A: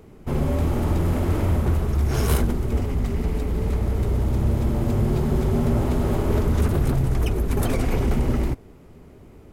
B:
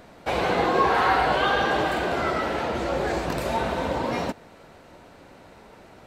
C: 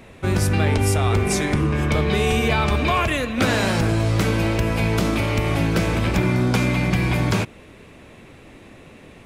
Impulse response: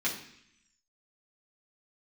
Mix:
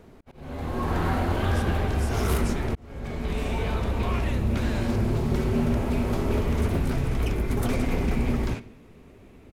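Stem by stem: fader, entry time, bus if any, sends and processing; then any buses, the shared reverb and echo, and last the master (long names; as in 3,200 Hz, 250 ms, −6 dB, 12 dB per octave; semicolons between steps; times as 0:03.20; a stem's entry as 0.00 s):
−5.0 dB, 0.00 s, send −14.5 dB, no processing
−11.0 dB, 0.00 s, no send, no processing
−16.0 dB, 1.15 s, send −16.5 dB, no processing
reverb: on, RT60 0.70 s, pre-delay 3 ms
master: volume swells 668 ms; highs frequency-modulated by the lows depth 0.21 ms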